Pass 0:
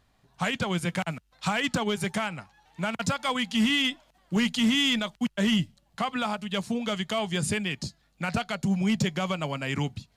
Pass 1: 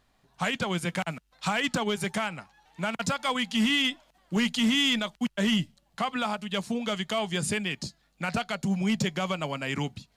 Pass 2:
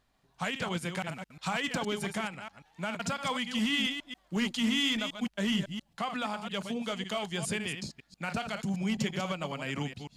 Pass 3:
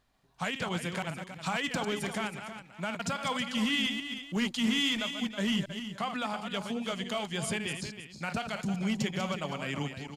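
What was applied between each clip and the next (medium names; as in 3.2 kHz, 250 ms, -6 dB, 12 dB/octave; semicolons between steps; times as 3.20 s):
peaking EQ 93 Hz -6.5 dB 1.3 oct
chunks repeated in reverse 138 ms, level -7.5 dB; trim -5 dB
delay 320 ms -10.5 dB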